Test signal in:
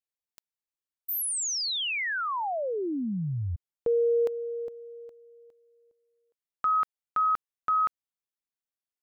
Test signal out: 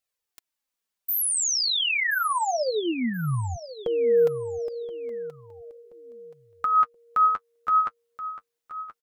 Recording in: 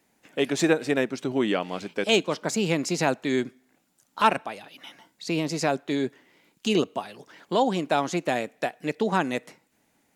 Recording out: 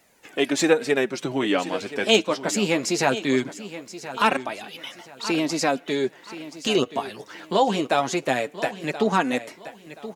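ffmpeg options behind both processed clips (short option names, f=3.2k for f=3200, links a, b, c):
-filter_complex "[0:a]lowshelf=f=400:g=-4,flanger=delay=1.4:depth=9:regen=28:speed=0.2:shape=triangular,asplit=2[a][b];[b]acompressor=threshold=-40dB:ratio=6:attack=0.11:release=165:knee=1:detection=rms,volume=0dB[c];[a][c]amix=inputs=2:normalize=0,aecho=1:1:1027|2054|3081:0.2|0.0579|0.0168,volume=6.5dB"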